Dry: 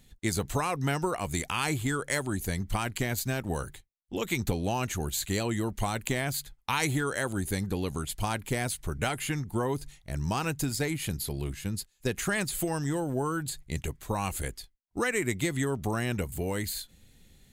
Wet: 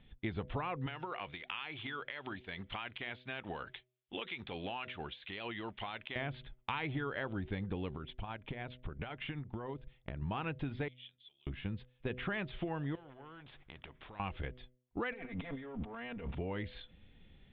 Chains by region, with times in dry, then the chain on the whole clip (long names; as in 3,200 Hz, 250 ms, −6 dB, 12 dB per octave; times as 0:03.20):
0:00.86–0:06.16: spectral tilt +4 dB per octave + downward compressor 12 to 1, threshold −30 dBFS
0:07.95–0:10.22: transient designer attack +9 dB, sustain −10 dB + downward compressor 10 to 1, threshold −33 dBFS
0:10.88–0:11.47: downward compressor 4 to 1, threshold −33 dBFS + resonant band-pass 3,400 Hz, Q 9.3
0:12.95–0:14.20: downward compressor 4 to 1, threshold −41 dBFS + every bin compressed towards the loudest bin 2 to 1
0:15.12–0:16.35: lower of the sound and its delayed copy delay 4.3 ms + high-shelf EQ 6,500 Hz −11 dB + compressor whose output falls as the input rises −41 dBFS
whole clip: Chebyshev low-pass filter 3,500 Hz, order 6; hum removal 125.4 Hz, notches 5; downward compressor 2.5 to 1, threshold −36 dBFS; level −1 dB